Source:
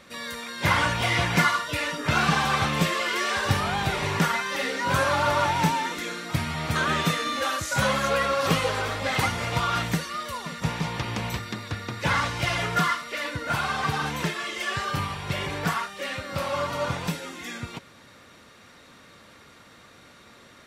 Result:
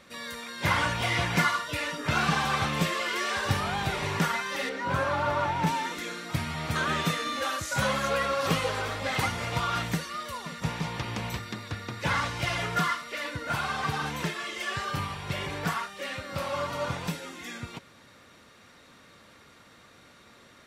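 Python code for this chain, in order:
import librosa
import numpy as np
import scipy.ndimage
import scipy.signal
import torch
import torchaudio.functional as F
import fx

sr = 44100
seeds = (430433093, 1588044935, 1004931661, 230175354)

y = fx.high_shelf(x, sr, hz=3500.0, db=-12.0, at=(4.69, 5.67))
y = y * 10.0 ** (-3.5 / 20.0)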